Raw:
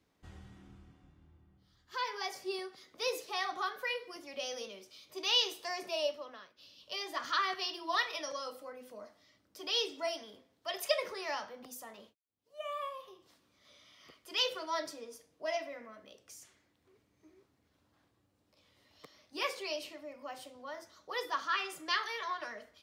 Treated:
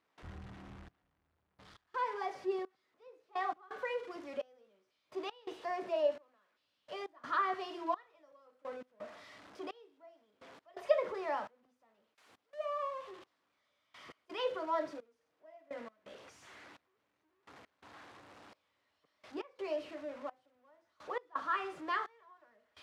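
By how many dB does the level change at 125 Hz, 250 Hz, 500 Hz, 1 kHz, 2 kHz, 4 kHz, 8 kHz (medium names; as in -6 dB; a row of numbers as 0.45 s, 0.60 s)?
no reading, +2.0 dB, +1.0 dB, -0.5 dB, -6.0 dB, -17.0 dB, under -15 dB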